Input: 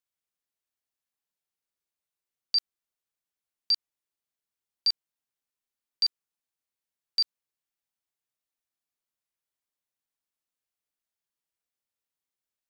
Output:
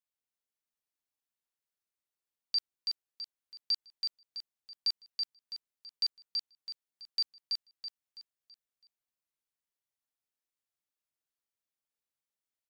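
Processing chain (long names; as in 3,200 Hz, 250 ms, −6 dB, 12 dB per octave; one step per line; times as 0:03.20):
repeating echo 329 ms, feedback 39%, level −3.5 dB
level −6 dB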